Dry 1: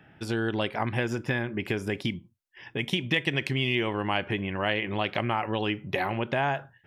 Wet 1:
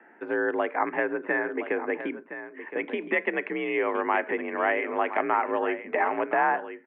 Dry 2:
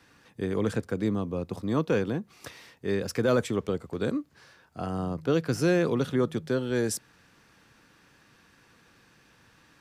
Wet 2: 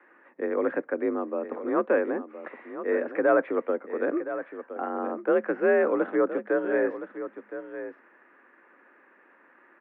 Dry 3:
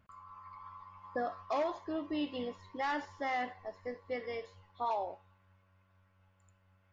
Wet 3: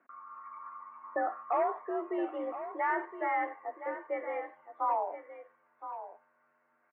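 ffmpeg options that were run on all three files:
-af "lowshelf=f=410:g=-4.5,aecho=1:1:1017:0.266,highpass=f=220:t=q:w=0.5412,highpass=f=220:t=q:w=1.307,lowpass=f=2000:t=q:w=0.5176,lowpass=f=2000:t=q:w=0.7071,lowpass=f=2000:t=q:w=1.932,afreqshift=52,volume=1.78"

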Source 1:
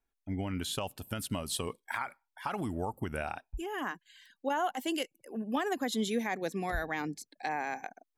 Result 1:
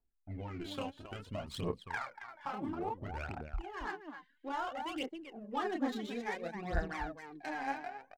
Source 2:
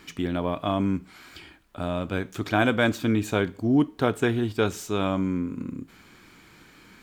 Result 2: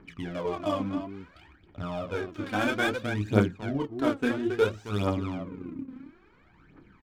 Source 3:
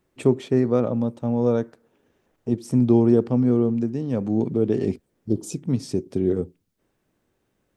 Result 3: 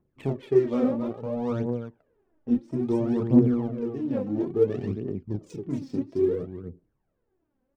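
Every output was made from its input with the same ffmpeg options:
-af "aecho=1:1:29.15|271.1:0.708|0.447,adynamicsmooth=sensitivity=5:basefreq=1400,aphaser=in_gain=1:out_gain=1:delay=4:decay=0.68:speed=0.59:type=triangular,volume=0.398"

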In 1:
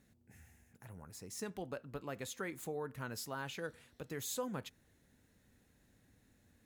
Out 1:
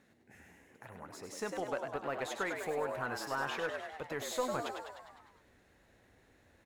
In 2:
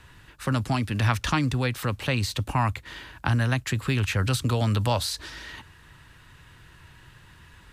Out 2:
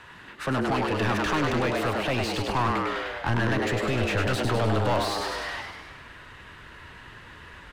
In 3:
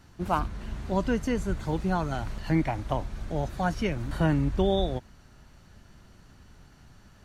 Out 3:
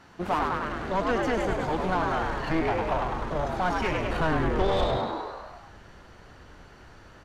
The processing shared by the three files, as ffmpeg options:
-filter_complex "[0:a]aeval=exprs='0.376*(cos(1*acos(clip(val(0)/0.376,-1,1)))-cos(1*PI/2))+0.0531*(cos(4*acos(clip(val(0)/0.376,-1,1)))-cos(4*PI/2))+0.0168*(cos(8*acos(clip(val(0)/0.376,-1,1)))-cos(8*PI/2))':c=same,asplit=2[s0][s1];[s1]asplit=8[s2][s3][s4][s5][s6][s7][s8][s9];[s2]adelay=101,afreqshift=97,volume=0.473[s10];[s3]adelay=202,afreqshift=194,volume=0.285[s11];[s4]adelay=303,afreqshift=291,volume=0.17[s12];[s5]adelay=404,afreqshift=388,volume=0.102[s13];[s6]adelay=505,afreqshift=485,volume=0.0617[s14];[s7]adelay=606,afreqshift=582,volume=0.0367[s15];[s8]adelay=707,afreqshift=679,volume=0.0221[s16];[s9]adelay=808,afreqshift=776,volume=0.0132[s17];[s10][s11][s12][s13][s14][s15][s16][s17]amix=inputs=8:normalize=0[s18];[s0][s18]amix=inputs=2:normalize=0,asubboost=boost=5.5:cutoff=80,asplit=2[s19][s20];[s20]highpass=f=720:p=1,volume=20,asoftclip=type=tanh:threshold=0.501[s21];[s19][s21]amix=inputs=2:normalize=0,lowpass=f=1500:p=1,volume=0.501,volume=0.376"

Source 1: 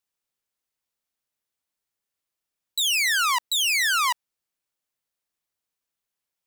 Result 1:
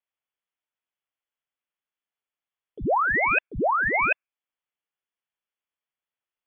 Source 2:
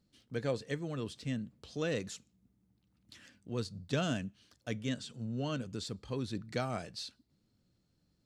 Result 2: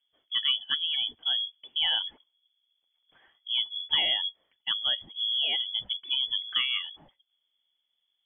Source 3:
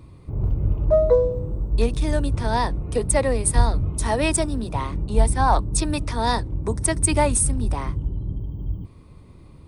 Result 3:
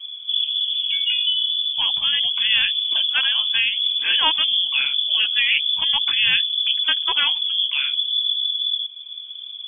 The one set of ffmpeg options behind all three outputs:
-filter_complex "[0:a]afftdn=nr=14:nf=-43,afftfilt=real='re*lt(hypot(re,im),0.794)':imag='im*lt(hypot(re,im),0.794)':win_size=1024:overlap=0.75,asplit=2[s0][s1];[s1]acompressor=threshold=0.0112:ratio=8,volume=1.41[s2];[s0][s2]amix=inputs=2:normalize=0,lowpass=f=3000:t=q:w=0.5098,lowpass=f=3000:t=q:w=0.6013,lowpass=f=3000:t=q:w=0.9,lowpass=f=3000:t=q:w=2.563,afreqshift=-3500,volume=1.5"

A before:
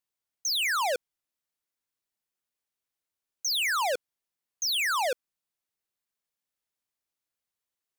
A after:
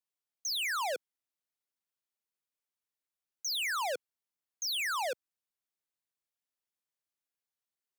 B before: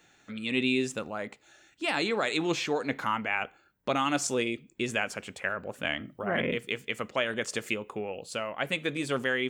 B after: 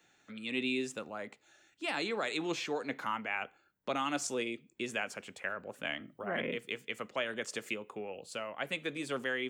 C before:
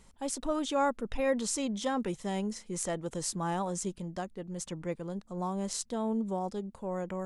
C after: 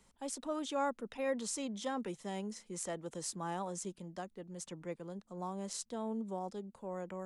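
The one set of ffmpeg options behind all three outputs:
-filter_complex "[0:a]lowshelf=f=86:g=-8,acrossover=split=130|460|1800[s0][s1][s2][s3];[s0]acompressor=threshold=0.00112:ratio=6[s4];[s4][s1][s2][s3]amix=inputs=4:normalize=0,volume=0.501"

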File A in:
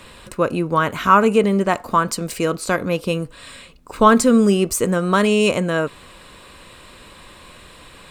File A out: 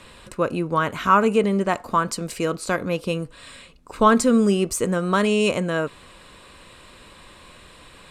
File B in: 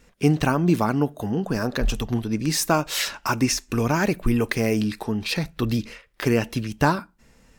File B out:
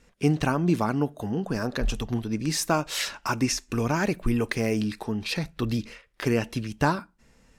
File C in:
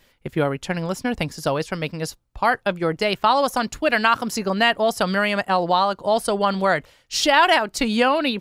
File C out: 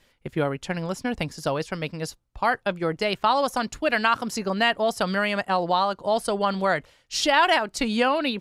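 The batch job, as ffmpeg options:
-af "lowpass=12000,volume=0.668"

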